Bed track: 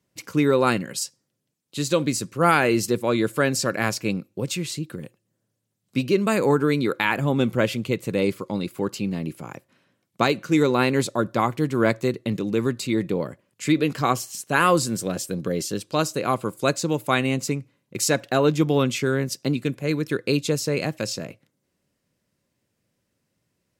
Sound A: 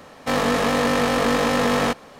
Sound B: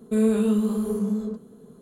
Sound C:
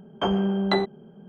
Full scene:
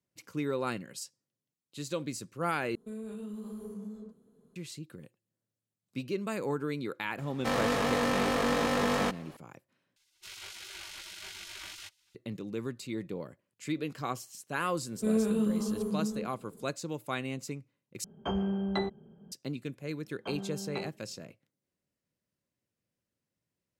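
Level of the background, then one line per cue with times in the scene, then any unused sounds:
bed track −13.5 dB
0:02.75: overwrite with B −16 dB + brickwall limiter −18.5 dBFS
0:07.18: mix in A −8.5 dB
0:09.96: overwrite with A −13.5 dB + gate on every frequency bin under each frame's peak −20 dB weak
0:14.91: mix in B −7 dB
0:18.04: overwrite with C −10 dB + parametric band 68 Hz +11 dB 1.9 octaves
0:20.04: mix in C −17 dB

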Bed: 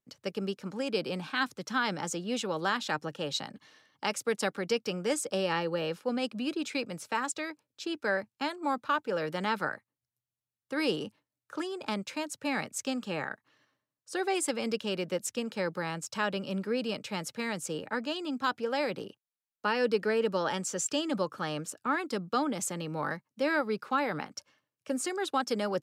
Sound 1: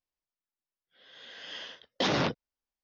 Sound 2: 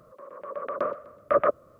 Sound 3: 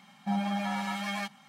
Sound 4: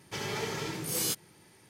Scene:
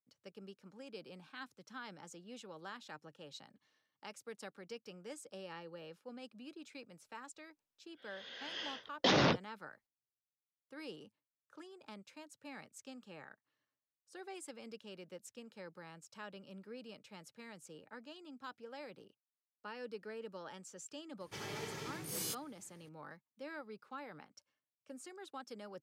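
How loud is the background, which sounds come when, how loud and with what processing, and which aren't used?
bed −18.5 dB
0:07.04: mix in 1 −1.5 dB
0:21.20: mix in 4 −9.5 dB
not used: 2, 3

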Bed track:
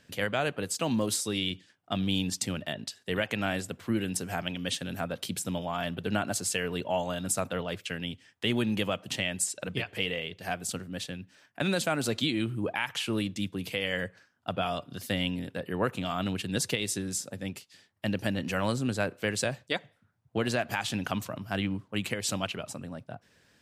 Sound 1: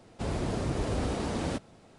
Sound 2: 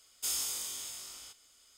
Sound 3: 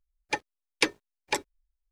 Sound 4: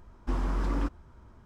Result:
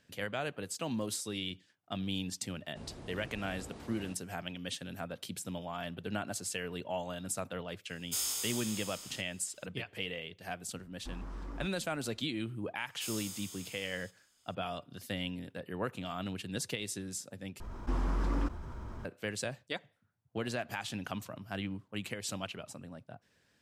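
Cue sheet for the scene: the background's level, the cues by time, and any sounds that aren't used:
bed track −7.5 dB
0:02.56: mix in 1 −17 dB
0:07.89: mix in 2 −0.5 dB
0:10.78: mix in 4 −14 dB
0:12.78: mix in 2 −8 dB
0:17.60: overwrite with 4 −3.5 dB + envelope flattener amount 50%
not used: 3

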